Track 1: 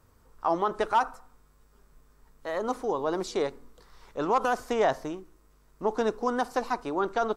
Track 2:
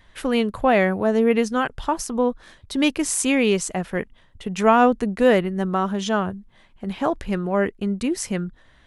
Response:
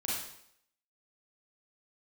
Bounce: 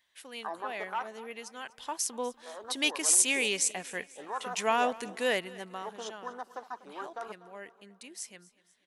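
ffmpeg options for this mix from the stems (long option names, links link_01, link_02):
-filter_complex "[0:a]afwtdn=0.0316,acontrast=27,volume=-15dB,asplit=2[link_01][link_02];[link_02]volume=-17dB[link_03];[1:a]equalizer=frequency=1300:width_type=o:width=0.37:gain=-6.5,volume=-8.5dB,afade=type=in:start_time=1.55:duration=0.6:silence=0.281838,afade=type=out:start_time=5.33:duration=0.7:silence=0.251189,asplit=2[link_04][link_05];[link_05]volume=-20.5dB[link_06];[link_03][link_06]amix=inputs=2:normalize=0,aecho=0:1:245|490|735|980|1225|1470|1715:1|0.48|0.23|0.111|0.0531|0.0255|0.0122[link_07];[link_01][link_04][link_07]amix=inputs=3:normalize=0,highpass=frequency=820:poles=1,highshelf=frequency=2100:gain=10.5"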